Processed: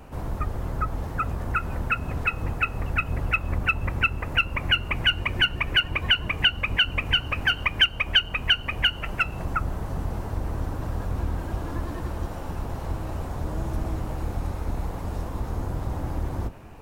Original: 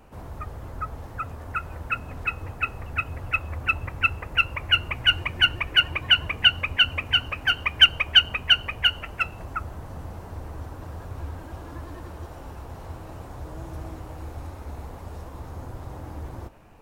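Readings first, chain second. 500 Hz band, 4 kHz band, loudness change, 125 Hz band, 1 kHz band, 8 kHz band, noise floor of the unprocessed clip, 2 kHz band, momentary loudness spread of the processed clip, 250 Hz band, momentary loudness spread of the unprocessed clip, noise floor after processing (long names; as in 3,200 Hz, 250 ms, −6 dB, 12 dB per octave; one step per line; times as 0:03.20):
+4.5 dB, −3.5 dB, −4.0 dB, +5.5 dB, +1.0 dB, can't be measured, −41 dBFS, −0.5 dB, 11 LU, +7.0 dB, 21 LU, −35 dBFS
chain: sub-octave generator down 1 octave, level +1 dB
downward compressor 2.5 to 1, threshold −27 dBFS, peak gain reduction 12.5 dB
level +5.5 dB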